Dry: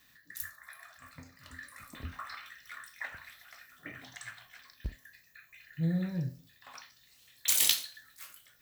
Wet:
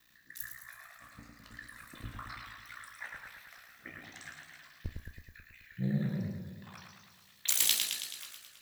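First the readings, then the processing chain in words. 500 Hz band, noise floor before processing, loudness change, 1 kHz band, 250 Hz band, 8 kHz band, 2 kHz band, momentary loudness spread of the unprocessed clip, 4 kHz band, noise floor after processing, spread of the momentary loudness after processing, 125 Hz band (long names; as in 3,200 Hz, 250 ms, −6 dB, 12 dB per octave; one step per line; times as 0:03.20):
−1.0 dB, −64 dBFS, −1.0 dB, −1.5 dB, −1.0 dB, −0.5 dB, −1.0 dB, 24 LU, −0.5 dB, −62 dBFS, 23 LU, −1.0 dB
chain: ring modulation 30 Hz
feedback echo with a swinging delay time 108 ms, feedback 64%, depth 115 cents, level −5 dB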